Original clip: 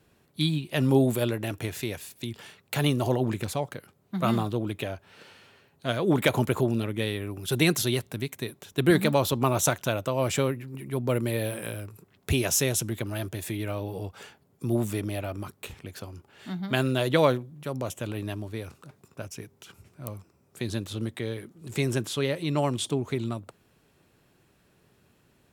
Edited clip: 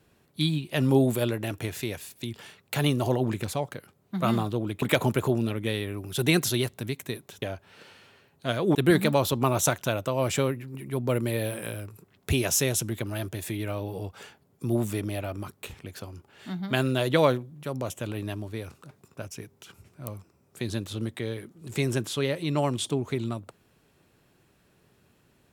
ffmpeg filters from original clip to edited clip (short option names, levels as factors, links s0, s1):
-filter_complex "[0:a]asplit=4[s0][s1][s2][s3];[s0]atrim=end=4.822[s4];[s1]atrim=start=6.148:end=8.752[s5];[s2]atrim=start=4.818:end=6.152[s6];[s3]atrim=start=8.748[s7];[s4][s5]acrossfade=d=0.004:c1=hsin:c2=hsin[s8];[s8][s6]acrossfade=d=0.004:c1=hsin:c2=hsin[s9];[s9][s7]acrossfade=d=0.004:c1=hsin:c2=hsin"